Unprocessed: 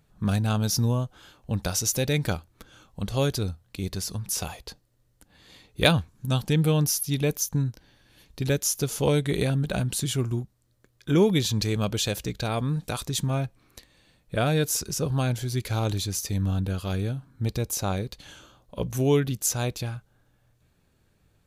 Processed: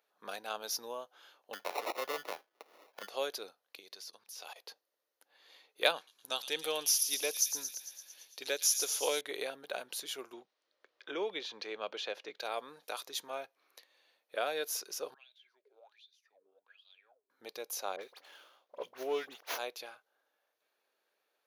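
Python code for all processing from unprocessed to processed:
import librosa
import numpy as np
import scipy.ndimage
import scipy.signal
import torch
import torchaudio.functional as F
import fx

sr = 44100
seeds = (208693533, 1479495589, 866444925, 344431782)

y = fx.chain(x, sr, fx.lowpass(hz=8200.0, slope=12),
    fx.sample_hold(seeds[0], rate_hz=1600.0, jitter_pct=0),
    fx.band_squash(depth_pct=40), at=(1.53, 3.09))
y = fx.chain(y, sr, fx.peak_eq(hz=4500.0, db=6.5, octaves=1.5),
    fx.level_steps(step_db=19), at=(3.79, 4.56))
y = fx.chain(y, sr, fx.lowpass(hz=10000.0, slope=12),
    fx.high_shelf(hz=3300.0, db=11.0),
    fx.echo_wet_highpass(ms=113, feedback_pct=67, hz=3400.0, wet_db=-7), at=(5.96, 9.21))
y = fx.chain(y, sr, fx.lowpass(hz=3400.0, slope=12),
    fx.band_squash(depth_pct=40), at=(10.33, 12.4))
y = fx.chain(y, sr, fx.wah_lfo(hz=1.3, low_hz=380.0, high_hz=3900.0, q=19.0),
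    fx.comb_fb(f0_hz=210.0, decay_s=0.23, harmonics='all', damping=0.0, mix_pct=40),
    fx.band_squash(depth_pct=70), at=(15.14, 17.3))
y = fx.chain(y, sr, fx.dispersion(late='highs', ms=58.0, hz=2300.0),
    fx.running_max(window=5), at=(17.96, 19.59))
y = scipy.signal.sosfilt(scipy.signal.butter(4, 460.0, 'highpass', fs=sr, output='sos'), y)
y = fx.peak_eq(y, sr, hz=8000.0, db=-15.0, octaves=0.31)
y = y * librosa.db_to_amplitude(-7.0)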